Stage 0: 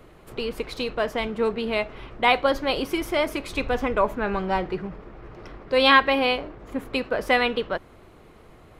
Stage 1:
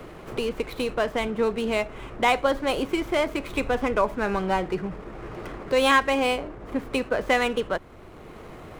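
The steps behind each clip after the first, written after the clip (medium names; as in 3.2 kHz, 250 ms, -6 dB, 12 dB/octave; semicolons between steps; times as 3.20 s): median filter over 9 samples; three bands compressed up and down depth 40%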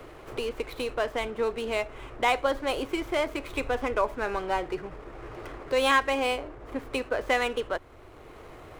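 peaking EQ 190 Hz -13.5 dB 0.55 oct; trim -3 dB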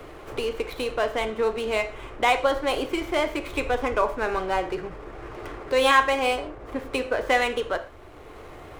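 reverberation, pre-delay 3 ms, DRR 7.5 dB; trim +3 dB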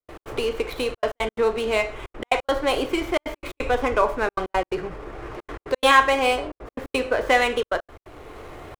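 trance gate ".x.xxxxxxxx.x" 175 bpm -60 dB; trim +3 dB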